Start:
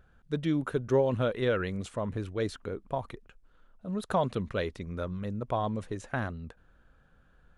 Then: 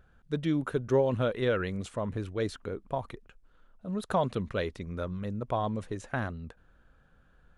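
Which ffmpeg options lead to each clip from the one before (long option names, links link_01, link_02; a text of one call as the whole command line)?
ffmpeg -i in.wav -af anull out.wav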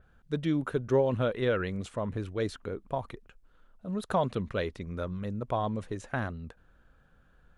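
ffmpeg -i in.wav -af "adynamicequalizer=threshold=0.00282:dfrequency=4600:dqfactor=0.7:tfrequency=4600:tqfactor=0.7:attack=5:release=100:ratio=0.375:range=2:mode=cutabove:tftype=highshelf" out.wav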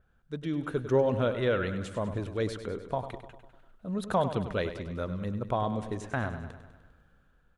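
ffmpeg -i in.wav -filter_complex "[0:a]dynaudnorm=framelen=140:gausssize=9:maxgain=7dB,asplit=2[link_01][link_02];[link_02]aecho=0:1:100|200|300|400|500|600|700:0.282|0.166|0.0981|0.0579|0.0342|0.0201|0.0119[link_03];[link_01][link_03]amix=inputs=2:normalize=0,volume=-6.5dB" out.wav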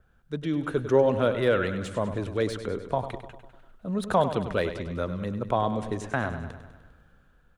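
ffmpeg -i in.wav -filter_complex "[0:a]acrossover=split=210|2600[link_01][link_02][link_03];[link_01]alimiter=level_in=10.5dB:limit=-24dB:level=0:latency=1,volume=-10.5dB[link_04];[link_03]asoftclip=type=hard:threshold=-39.5dB[link_05];[link_04][link_02][link_05]amix=inputs=3:normalize=0,volume=4.5dB" out.wav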